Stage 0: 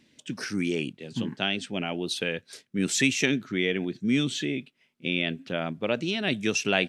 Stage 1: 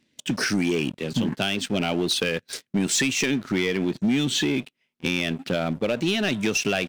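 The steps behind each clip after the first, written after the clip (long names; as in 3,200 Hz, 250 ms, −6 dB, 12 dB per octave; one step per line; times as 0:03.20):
downward compressor 6 to 1, threshold −29 dBFS, peak gain reduction 11.5 dB
leveller curve on the samples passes 3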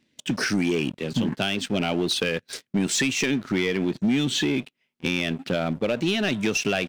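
high-shelf EQ 6,400 Hz −4 dB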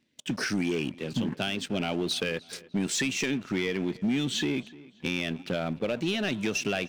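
feedback echo with a low-pass in the loop 300 ms, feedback 42%, low-pass 4,400 Hz, level −21 dB
level −5 dB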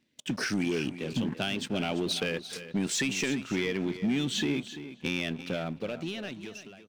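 fade-out on the ending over 1.65 s
single-tap delay 341 ms −13 dB
level −1 dB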